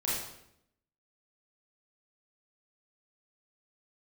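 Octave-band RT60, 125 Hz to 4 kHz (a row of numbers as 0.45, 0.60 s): 0.90, 0.95, 0.80, 0.70, 0.70, 0.65 s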